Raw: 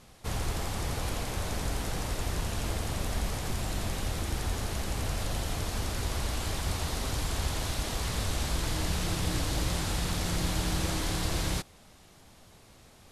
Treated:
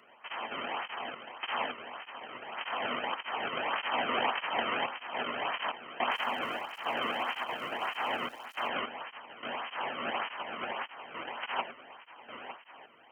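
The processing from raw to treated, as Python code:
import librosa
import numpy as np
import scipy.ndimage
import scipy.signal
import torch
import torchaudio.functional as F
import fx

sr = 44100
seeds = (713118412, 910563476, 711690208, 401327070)

y = fx.envelope_flatten(x, sr, power=0.1)
y = fx.over_compress(y, sr, threshold_db=-32.0, ratio=-0.5)
y = fx.echo_feedback(y, sr, ms=908, feedback_pct=46, wet_db=-9)
y = fx.tremolo_random(y, sr, seeds[0], hz=3.5, depth_pct=85)
y = fx.freq_invert(y, sr, carrier_hz=3100)
y = scipy.signal.sosfilt(scipy.signal.butter(2, 93.0, 'highpass', fs=sr, output='sos'), y)
y = fx.peak_eq(y, sr, hz=870.0, db=11.5, octaves=1.3)
y = fx.dmg_crackle(y, sr, seeds[1], per_s=430.0, level_db=-47.0, at=(6.1, 8.67), fade=0.02)
y = fx.peak_eq(y, sr, hz=240.0, db=10.0, octaves=0.2)
y = fx.flanger_cancel(y, sr, hz=1.7, depth_ms=1.3)
y = y * librosa.db_to_amplitude(5.0)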